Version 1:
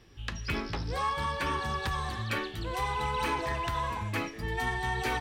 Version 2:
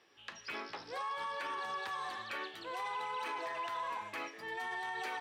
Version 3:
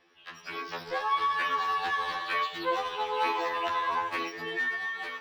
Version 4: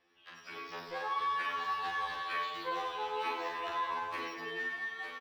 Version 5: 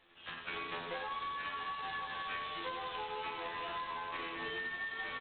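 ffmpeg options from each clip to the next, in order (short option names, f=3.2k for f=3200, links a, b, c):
-af "highpass=530,highshelf=f=5.2k:g=-8.5,alimiter=level_in=5dB:limit=-24dB:level=0:latency=1:release=32,volume=-5dB,volume=-2.5dB"
-filter_complex "[0:a]dynaudnorm=f=210:g=7:m=8.5dB,acrossover=split=350|780|5700[a][b][c][d];[d]acrusher=samples=8:mix=1:aa=0.000001:lfo=1:lforange=8:lforate=1.1[e];[a][b][c][e]amix=inputs=4:normalize=0,afftfilt=real='re*2*eq(mod(b,4),0)':imag='im*2*eq(mod(b,4),0)':win_size=2048:overlap=0.75,volume=5dB"
-af "aecho=1:1:40|96|174.4|284.2|437.8:0.631|0.398|0.251|0.158|0.1,volume=-8.5dB"
-af "acompressor=threshold=-44dB:ratio=16,aemphasis=mode=production:type=cd,volume=6dB" -ar 8000 -c:a adpcm_g726 -b:a 16k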